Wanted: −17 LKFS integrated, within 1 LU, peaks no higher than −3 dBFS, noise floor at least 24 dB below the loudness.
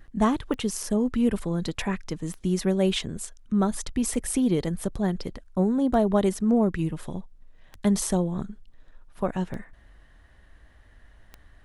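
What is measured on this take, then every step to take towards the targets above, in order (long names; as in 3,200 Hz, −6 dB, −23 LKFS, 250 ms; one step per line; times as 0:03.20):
number of clicks 7; integrated loudness −26.5 LKFS; sample peak −9.5 dBFS; target loudness −17.0 LKFS
→ click removal
level +9.5 dB
brickwall limiter −3 dBFS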